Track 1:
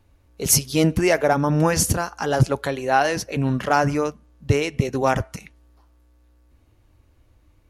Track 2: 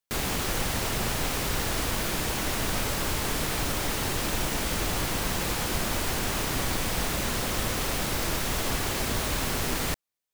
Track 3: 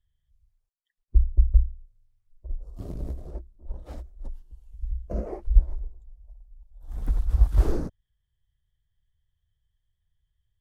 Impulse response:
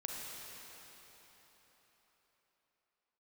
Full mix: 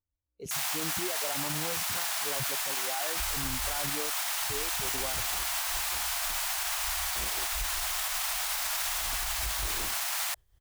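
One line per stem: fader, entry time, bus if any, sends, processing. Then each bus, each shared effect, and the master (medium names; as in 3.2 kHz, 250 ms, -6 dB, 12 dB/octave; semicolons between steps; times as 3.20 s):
-4.5 dB, 0.00 s, no send, peak limiter -12 dBFS, peak gain reduction 8.5 dB; spectral contrast expander 1.5:1
+1.5 dB, 0.40 s, no send, steep high-pass 650 Hz 72 dB/octave; treble shelf 5.1 kHz +5 dB
-5.5 dB, 2.05 s, no send, spectral levelling over time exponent 0.6; tremolo 5.4 Hz, depth 61%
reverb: none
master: bass shelf 380 Hz -9 dB; peak limiter -22 dBFS, peak gain reduction 9.5 dB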